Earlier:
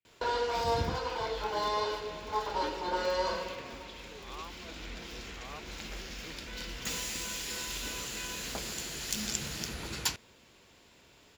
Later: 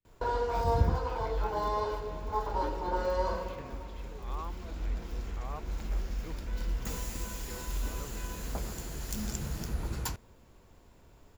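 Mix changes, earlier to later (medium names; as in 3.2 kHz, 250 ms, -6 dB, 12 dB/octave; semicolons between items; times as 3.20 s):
speech +4.0 dB; master: remove frequency weighting D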